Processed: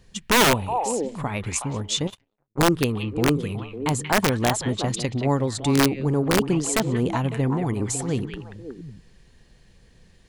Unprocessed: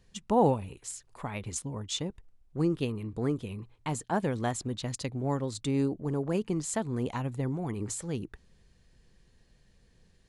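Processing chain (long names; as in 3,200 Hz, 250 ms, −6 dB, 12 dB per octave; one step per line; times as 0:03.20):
echo through a band-pass that steps 184 ms, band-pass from 2,500 Hz, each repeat −1.4 octaves, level −2 dB
0:02.07–0:02.59: power curve on the samples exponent 3
wrap-around overflow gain 19.5 dB
level +8.5 dB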